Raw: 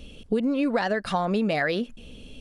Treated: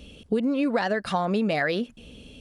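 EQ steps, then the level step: high-pass 43 Hz; 0.0 dB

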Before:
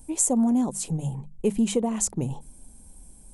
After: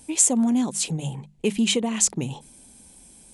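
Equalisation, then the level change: frequency weighting D; dynamic bell 560 Hz, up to -5 dB, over -36 dBFS, Q 0.81; treble shelf 4.4 kHz -5.5 dB; +4.0 dB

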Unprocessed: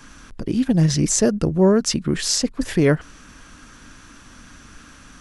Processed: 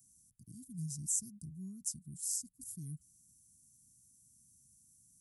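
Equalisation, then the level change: high-pass 320 Hz 12 dB/octave; inverse Chebyshev band-stop 480–2700 Hz, stop band 70 dB; high-order bell 1.4 kHz +13.5 dB 2.3 oct; -3.0 dB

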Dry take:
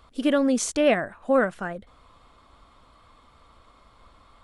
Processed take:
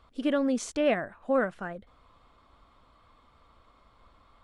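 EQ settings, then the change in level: treble shelf 7.4 kHz -11.5 dB; -5.0 dB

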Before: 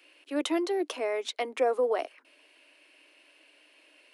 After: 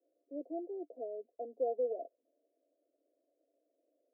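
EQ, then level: rippled Chebyshev low-pass 710 Hz, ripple 6 dB; bass shelf 210 Hz -7.5 dB; -5.5 dB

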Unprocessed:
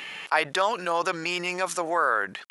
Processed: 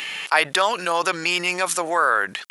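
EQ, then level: treble shelf 2.4 kHz +10.5 dB; dynamic bell 6.1 kHz, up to -5 dB, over -38 dBFS, Q 1.2; +2.5 dB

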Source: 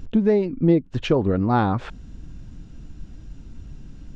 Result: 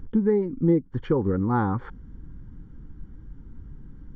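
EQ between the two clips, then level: Savitzky-Golay filter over 41 samples; Butterworth band-stop 650 Hz, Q 2.8; -3.0 dB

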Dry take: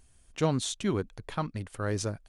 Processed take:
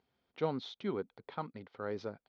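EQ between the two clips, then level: distance through air 300 m; cabinet simulation 310–5000 Hz, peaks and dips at 320 Hz -7 dB, 620 Hz -7 dB, 1.1 kHz -6 dB, 1.7 kHz -9 dB, 2.7 kHz -9 dB; 0.0 dB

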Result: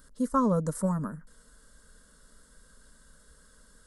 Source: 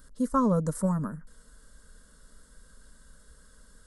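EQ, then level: bass shelf 120 Hz -5 dB; 0.0 dB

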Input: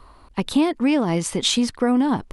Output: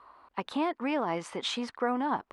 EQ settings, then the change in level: band-pass filter 1.1 kHz, Q 1; -2.0 dB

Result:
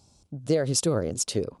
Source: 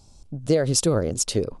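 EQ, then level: high-pass 82 Hz; -3.5 dB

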